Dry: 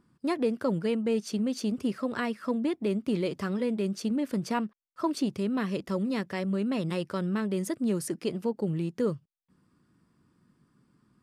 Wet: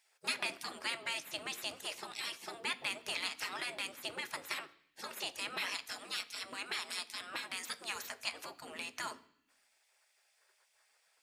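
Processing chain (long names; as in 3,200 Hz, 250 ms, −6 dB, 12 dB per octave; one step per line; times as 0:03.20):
0:05.80–0:07.96: low-shelf EQ 220 Hz −7.5 dB
gate on every frequency bin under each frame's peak −25 dB weak
parametric band 130 Hz −5.5 dB 0.96 octaves
mains-hum notches 50/100 Hz
convolution reverb RT60 0.65 s, pre-delay 3 ms, DRR 10 dB
level +9 dB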